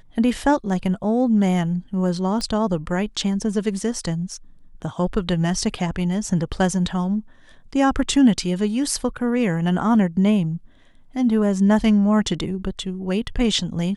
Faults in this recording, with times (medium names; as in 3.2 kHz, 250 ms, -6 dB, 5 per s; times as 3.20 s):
2.41 s: pop -15 dBFS